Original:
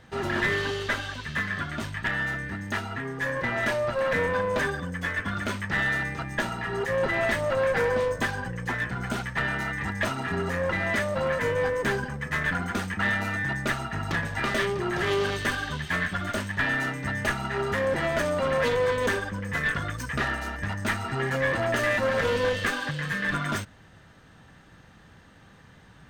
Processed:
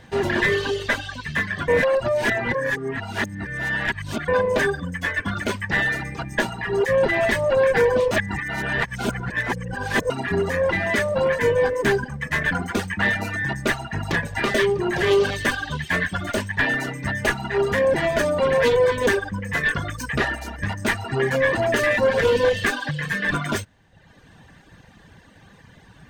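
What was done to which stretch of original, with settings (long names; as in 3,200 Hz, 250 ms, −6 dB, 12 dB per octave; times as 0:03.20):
0:01.68–0:04.28: reverse
0:08.11–0:10.10: reverse
whole clip: notch filter 1,300 Hz, Q 7.1; reverb reduction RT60 0.92 s; dynamic equaliser 430 Hz, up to +5 dB, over −42 dBFS, Q 2.2; level +6 dB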